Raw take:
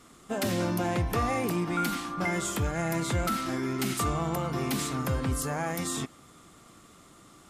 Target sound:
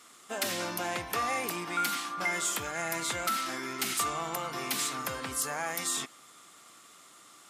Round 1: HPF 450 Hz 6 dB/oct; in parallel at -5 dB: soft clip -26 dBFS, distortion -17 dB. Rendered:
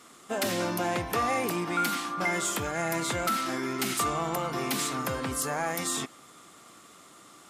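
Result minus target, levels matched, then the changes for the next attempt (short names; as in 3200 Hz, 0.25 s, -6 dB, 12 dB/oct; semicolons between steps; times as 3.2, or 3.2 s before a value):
500 Hz band +4.0 dB
change: HPF 1400 Hz 6 dB/oct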